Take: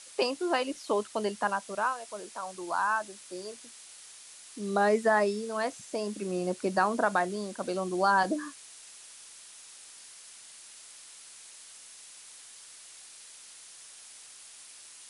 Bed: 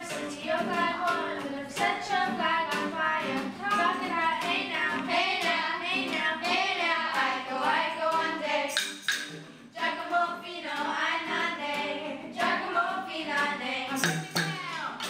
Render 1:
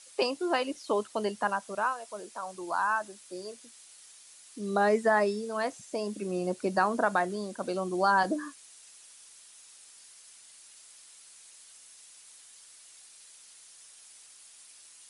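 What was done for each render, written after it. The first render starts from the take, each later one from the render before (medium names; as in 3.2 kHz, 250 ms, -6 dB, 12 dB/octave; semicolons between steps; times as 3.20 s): noise reduction 6 dB, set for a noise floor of -51 dBFS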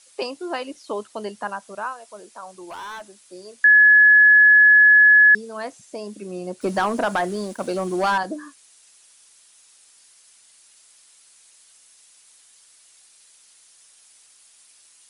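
2.53–3.14 s: hard clipper -32 dBFS; 3.64–5.35 s: bleep 1.7 kHz -8.5 dBFS; 6.61–8.18 s: waveshaping leveller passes 2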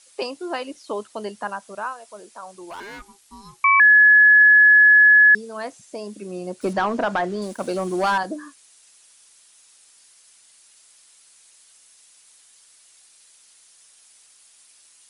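2.80–3.80 s: ring modulator 600 Hz; 4.41–5.07 s: transient shaper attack +3 dB, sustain +10 dB; 6.73–7.42 s: distance through air 90 m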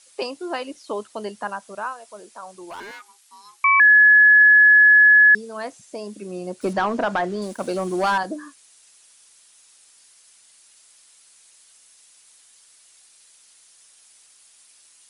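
2.91–3.88 s: high-pass 790 Hz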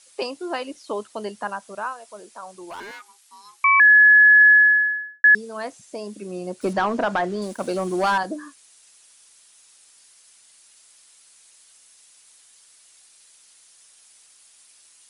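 4.49–5.24 s: studio fade out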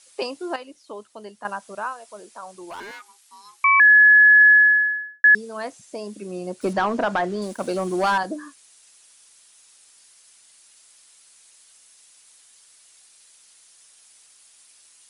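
0.56–1.45 s: gain -8.5 dB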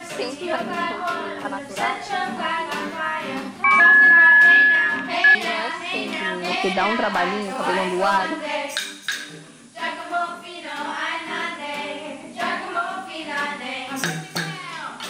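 add bed +2.5 dB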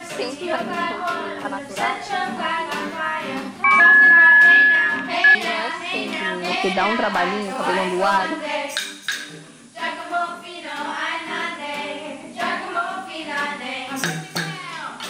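trim +1 dB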